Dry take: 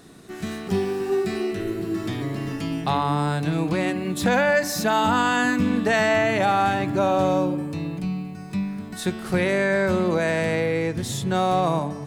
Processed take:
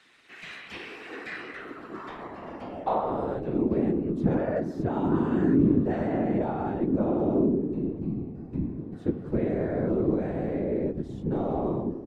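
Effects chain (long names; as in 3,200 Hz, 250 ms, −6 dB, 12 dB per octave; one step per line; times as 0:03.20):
band-pass filter sweep 2,400 Hz → 280 Hz, 0:00.96–0:04.00
random phases in short frames
pitch-shifted copies added −3 semitones −7 dB
level +2 dB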